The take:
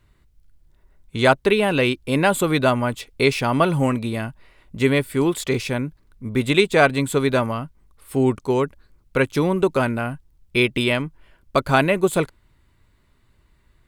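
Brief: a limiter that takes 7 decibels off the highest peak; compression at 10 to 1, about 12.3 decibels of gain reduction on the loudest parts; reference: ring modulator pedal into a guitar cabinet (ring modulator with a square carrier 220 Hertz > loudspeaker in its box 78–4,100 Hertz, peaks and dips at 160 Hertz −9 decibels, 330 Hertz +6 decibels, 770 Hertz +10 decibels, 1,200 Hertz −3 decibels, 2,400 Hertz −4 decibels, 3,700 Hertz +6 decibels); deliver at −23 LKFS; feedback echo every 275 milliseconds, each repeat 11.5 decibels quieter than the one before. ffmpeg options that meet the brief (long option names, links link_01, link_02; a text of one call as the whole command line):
ffmpeg -i in.wav -af "acompressor=threshold=-24dB:ratio=10,alimiter=limit=-19dB:level=0:latency=1,aecho=1:1:275|550|825:0.266|0.0718|0.0194,aeval=exprs='val(0)*sgn(sin(2*PI*220*n/s))':channel_layout=same,highpass=78,equalizer=frequency=160:width_type=q:width=4:gain=-9,equalizer=frequency=330:width_type=q:width=4:gain=6,equalizer=frequency=770:width_type=q:width=4:gain=10,equalizer=frequency=1200:width_type=q:width=4:gain=-3,equalizer=frequency=2400:width_type=q:width=4:gain=-4,equalizer=frequency=3700:width_type=q:width=4:gain=6,lowpass=frequency=4100:width=0.5412,lowpass=frequency=4100:width=1.3066,volume=6dB" out.wav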